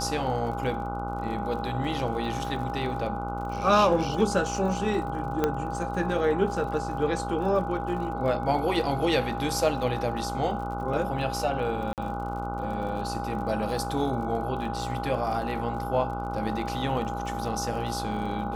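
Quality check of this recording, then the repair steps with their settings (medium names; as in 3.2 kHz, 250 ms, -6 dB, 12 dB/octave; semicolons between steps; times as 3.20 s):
buzz 60 Hz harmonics 25 -34 dBFS
crackle 50 per s -37 dBFS
whine 810 Hz -33 dBFS
5.44 s: pop -11 dBFS
11.93–11.98 s: dropout 48 ms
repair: de-click; de-hum 60 Hz, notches 25; band-stop 810 Hz, Q 30; interpolate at 11.93 s, 48 ms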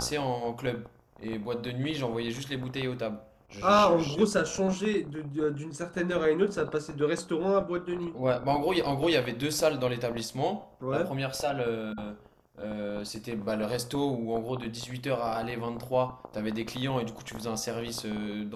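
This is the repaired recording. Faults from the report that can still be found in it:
nothing left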